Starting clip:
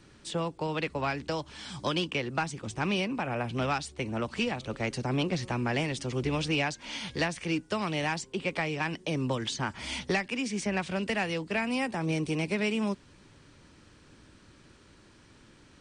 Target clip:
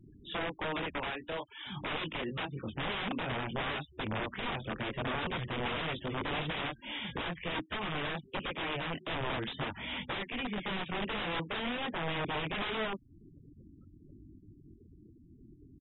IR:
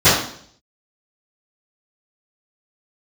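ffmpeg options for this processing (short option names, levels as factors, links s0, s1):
-filter_complex "[0:a]flanger=delay=19.5:depth=4.7:speed=0.49,asplit=3[s0][s1][s2];[s0]afade=t=out:st=0.99:d=0.02[s3];[s1]equalizer=f=120:t=o:w=2.7:g=-12.5,afade=t=in:st=0.99:d=0.02,afade=t=out:st=1.65:d=0.02[s4];[s2]afade=t=in:st=1.65:d=0.02[s5];[s3][s4][s5]amix=inputs=3:normalize=0,asettb=1/sr,asplit=3[s6][s7][s8];[s6]atrim=end=11.384[s9];[s7]atrim=start=11.38:end=12.4,asetpts=PTS-STARTPTS,afade=t=in:d=0.004:c=qsin,afade=t=out:st=1.016:d=0.004:c=qsin,highpass=f=52:p=1[s10];[s8]atrim=start=12.396[s11];[s9][s10]acrossfade=d=0.004:c1=hsin:c2=qsin[s12];[s12][s11]acrossfade=d=0.004:c1=qsin:c2=hsin,asplit=2[s13][s14];[s14]acompressor=threshold=0.00447:ratio=8,volume=1[s15];[s13][s15]amix=inputs=2:normalize=0,aeval=exprs='(mod(26.6*val(0)+1,2)-1)/26.6':c=same,aresample=8000,aresample=44100,afftfilt=real='re*gte(hypot(re,im),0.00708)':imag='im*gte(hypot(re,im),0.00708)':win_size=1024:overlap=0.75"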